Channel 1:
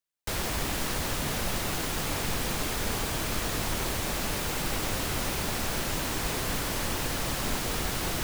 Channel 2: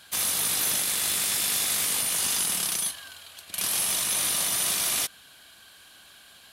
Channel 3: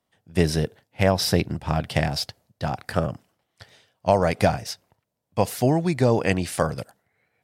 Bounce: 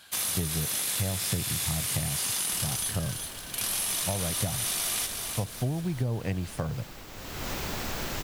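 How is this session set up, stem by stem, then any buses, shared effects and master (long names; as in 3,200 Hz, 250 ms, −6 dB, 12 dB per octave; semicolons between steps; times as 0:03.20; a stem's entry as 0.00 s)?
0:07.09 −14.5 dB → 0:07.50 −2.5 dB, 2.25 s, no send, no echo send, parametric band 9,600 Hz −11.5 dB 0.22 octaves
−1.5 dB, 0.00 s, no send, echo send −8 dB, no processing
−11.5 dB, 0.00 s, no send, no echo send, parametric band 110 Hz +14 dB 1.8 octaves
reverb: not used
echo: repeating echo 373 ms, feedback 39%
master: downward compressor, threshold −26 dBFS, peak gain reduction 9.5 dB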